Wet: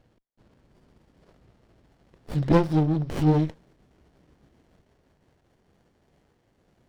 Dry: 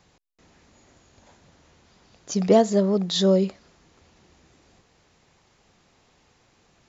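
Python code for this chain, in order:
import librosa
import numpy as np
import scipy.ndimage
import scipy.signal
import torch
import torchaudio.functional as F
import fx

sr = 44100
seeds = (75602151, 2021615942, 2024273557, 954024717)

y = fx.pitch_glide(x, sr, semitones=-7.5, runs='ending unshifted')
y = fx.running_max(y, sr, window=33)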